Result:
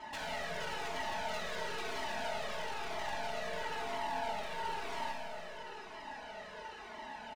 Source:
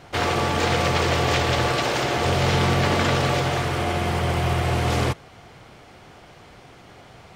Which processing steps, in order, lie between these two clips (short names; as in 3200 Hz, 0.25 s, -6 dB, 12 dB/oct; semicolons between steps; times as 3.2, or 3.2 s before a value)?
band inversion scrambler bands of 1000 Hz; LPF 2200 Hz 6 dB/oct; low shelf 450 Hz -10 dB; comb 4.7 ms, depth 80%; compressor 12:1, threshold -36 dBFS, peak gain reduction 18 dB; added harmonics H 2 -16 dB, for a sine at -24.5 dBFS; wavefolder -35 dBFS; Schroeder reverb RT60 2.8 s, combs from 27 ms, DRR 0.5 dB; cascading flanger falling 1 Hz; gain +3 dB